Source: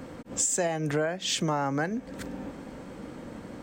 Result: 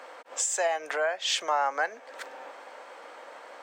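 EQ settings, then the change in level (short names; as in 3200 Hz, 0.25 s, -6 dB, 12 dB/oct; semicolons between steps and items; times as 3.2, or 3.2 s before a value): HPF 620 Hz 24 dB/oct; high shelf 5900 Hz -11.5 dB; +5.0 dB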